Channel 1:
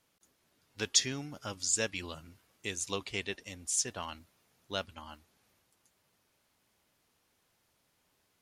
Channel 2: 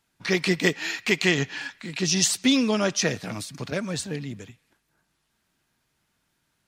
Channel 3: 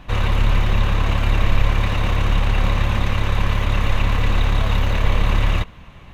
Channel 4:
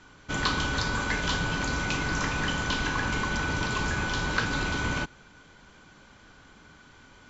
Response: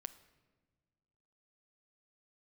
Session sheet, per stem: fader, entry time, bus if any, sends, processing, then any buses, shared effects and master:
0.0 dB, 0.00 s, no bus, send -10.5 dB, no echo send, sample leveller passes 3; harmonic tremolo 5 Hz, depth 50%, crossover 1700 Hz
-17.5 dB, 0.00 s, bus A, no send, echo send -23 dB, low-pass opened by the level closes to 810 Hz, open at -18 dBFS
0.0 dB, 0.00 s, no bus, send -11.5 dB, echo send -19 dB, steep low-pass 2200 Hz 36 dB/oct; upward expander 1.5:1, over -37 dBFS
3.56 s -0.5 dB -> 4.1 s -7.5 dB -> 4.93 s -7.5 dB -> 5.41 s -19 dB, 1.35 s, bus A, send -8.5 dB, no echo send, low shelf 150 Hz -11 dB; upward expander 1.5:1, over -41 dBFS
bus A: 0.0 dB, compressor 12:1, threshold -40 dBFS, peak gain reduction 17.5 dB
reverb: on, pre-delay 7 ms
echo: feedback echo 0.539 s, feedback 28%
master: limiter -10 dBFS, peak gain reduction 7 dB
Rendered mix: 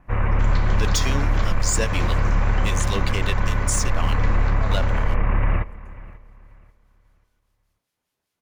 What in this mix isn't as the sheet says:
stem 2 -17.5 dB -> -28.0 dB; stem 4: entry 1.35 s -> 0.10 s

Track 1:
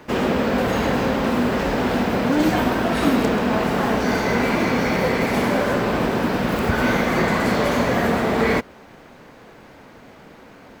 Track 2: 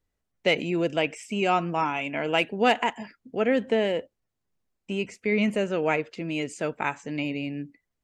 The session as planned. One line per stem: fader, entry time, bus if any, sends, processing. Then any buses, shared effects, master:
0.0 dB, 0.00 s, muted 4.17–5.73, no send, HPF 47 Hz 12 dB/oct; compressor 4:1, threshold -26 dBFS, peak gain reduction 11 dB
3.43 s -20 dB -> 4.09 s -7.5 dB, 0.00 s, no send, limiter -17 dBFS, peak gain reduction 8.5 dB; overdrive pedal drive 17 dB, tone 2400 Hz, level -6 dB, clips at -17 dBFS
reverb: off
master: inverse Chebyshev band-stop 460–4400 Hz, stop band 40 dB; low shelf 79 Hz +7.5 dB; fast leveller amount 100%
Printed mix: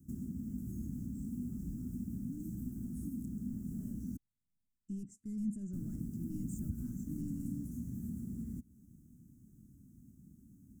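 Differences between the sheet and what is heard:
stem 1 0.0 dB -> -9.0 dB; master: missing fast leveller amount 100%

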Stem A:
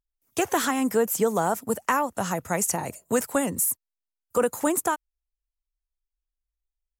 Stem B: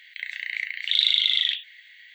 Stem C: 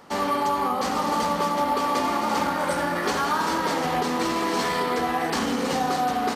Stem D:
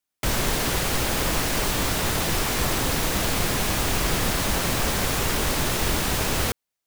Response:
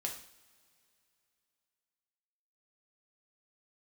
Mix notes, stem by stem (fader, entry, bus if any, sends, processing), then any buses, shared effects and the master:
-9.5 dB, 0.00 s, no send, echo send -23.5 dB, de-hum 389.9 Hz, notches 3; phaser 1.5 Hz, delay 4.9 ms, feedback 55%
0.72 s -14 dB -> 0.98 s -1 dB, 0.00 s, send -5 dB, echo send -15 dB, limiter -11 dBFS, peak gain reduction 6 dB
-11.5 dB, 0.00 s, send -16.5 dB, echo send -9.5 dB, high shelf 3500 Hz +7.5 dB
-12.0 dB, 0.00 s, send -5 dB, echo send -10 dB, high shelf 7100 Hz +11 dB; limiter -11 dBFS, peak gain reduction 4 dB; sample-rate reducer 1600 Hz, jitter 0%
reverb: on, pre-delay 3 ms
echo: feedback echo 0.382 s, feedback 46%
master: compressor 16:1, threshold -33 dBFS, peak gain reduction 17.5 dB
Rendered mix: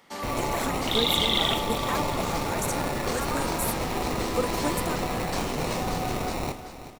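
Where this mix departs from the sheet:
stem B: send off; master: missing compressor 16:1, threshold -33 dBFS, peak gain reduction 17.5 dB

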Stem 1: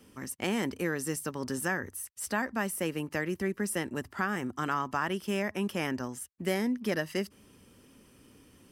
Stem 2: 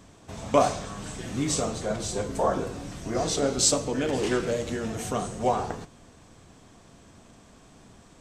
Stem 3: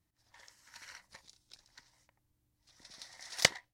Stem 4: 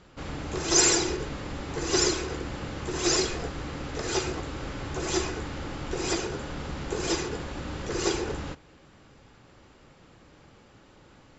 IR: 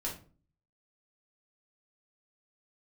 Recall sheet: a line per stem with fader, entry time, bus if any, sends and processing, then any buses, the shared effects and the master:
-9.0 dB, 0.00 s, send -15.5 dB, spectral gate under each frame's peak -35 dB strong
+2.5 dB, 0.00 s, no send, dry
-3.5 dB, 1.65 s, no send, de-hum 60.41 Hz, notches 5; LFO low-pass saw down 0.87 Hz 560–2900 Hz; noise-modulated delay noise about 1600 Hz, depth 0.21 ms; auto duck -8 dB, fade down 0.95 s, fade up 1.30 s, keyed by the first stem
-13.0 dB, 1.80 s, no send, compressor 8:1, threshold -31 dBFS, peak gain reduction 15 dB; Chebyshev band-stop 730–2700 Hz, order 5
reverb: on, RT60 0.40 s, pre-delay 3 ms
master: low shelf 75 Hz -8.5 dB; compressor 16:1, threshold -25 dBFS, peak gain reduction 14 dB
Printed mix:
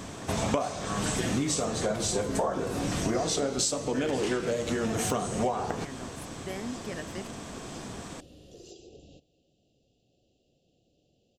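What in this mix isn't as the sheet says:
stem 2 +2.5 dB -> +13.0 dB; stem 3: missing LFO low-pass saw down 0.87 Hz 560–2900 Hz; stem 4: entry 1.80 s -> 0.65 s

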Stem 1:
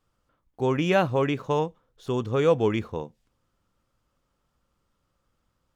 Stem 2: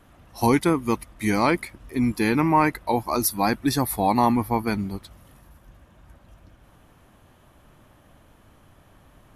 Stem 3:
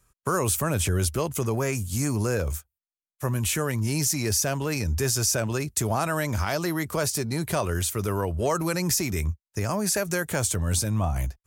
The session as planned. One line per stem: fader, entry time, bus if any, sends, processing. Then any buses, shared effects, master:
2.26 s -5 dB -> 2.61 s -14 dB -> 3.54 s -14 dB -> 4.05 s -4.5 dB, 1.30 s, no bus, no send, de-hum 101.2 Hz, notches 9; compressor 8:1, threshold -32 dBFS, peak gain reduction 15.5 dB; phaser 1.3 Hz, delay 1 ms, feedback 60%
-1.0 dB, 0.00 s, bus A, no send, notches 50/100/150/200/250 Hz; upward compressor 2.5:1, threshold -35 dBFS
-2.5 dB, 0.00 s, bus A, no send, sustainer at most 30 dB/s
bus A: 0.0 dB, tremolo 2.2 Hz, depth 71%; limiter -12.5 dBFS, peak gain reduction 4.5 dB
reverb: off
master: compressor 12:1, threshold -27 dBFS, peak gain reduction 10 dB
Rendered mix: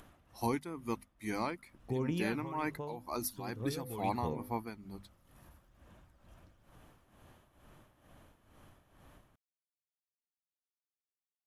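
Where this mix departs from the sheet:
stem 2 -1.0 dB -> -13.0 dB; stem 3: muted; master: missing compressor 12:1, threshold -27 dBFS, peak gain reduction 10 dB

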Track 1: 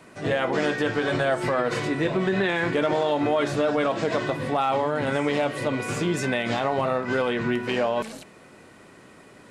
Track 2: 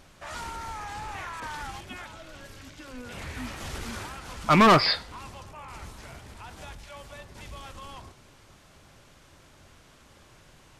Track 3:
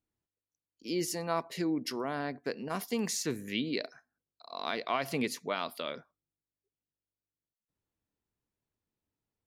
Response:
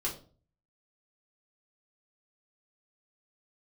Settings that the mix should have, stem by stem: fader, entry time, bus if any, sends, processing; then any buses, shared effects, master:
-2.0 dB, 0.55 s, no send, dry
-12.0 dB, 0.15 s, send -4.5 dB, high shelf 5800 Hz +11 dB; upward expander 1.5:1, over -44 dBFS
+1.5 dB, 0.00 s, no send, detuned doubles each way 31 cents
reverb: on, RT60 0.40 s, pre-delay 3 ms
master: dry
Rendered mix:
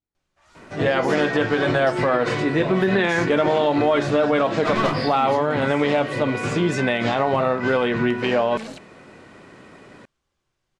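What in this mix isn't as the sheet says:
stem 1 -2.0 dB -> +4.5 dB; master: extra air absorption 70 m

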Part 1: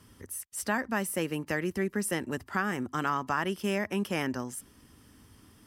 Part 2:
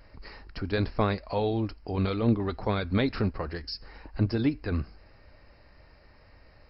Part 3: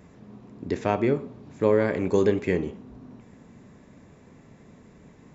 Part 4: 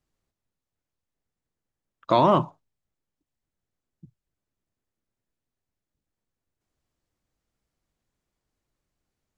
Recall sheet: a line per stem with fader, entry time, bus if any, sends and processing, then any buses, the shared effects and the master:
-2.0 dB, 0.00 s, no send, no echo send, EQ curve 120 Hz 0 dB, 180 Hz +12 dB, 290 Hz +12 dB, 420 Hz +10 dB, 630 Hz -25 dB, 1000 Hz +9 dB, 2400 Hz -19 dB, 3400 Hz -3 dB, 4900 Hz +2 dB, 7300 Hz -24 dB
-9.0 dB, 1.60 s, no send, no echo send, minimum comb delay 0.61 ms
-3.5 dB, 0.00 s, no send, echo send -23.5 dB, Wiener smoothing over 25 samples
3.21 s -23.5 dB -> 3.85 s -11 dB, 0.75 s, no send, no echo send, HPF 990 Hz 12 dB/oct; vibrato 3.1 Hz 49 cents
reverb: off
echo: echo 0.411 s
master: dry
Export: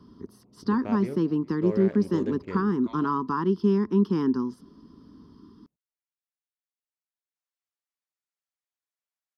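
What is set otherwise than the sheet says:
stem 2: muted; stem 3 -3.5 dB -> -12.0 dB

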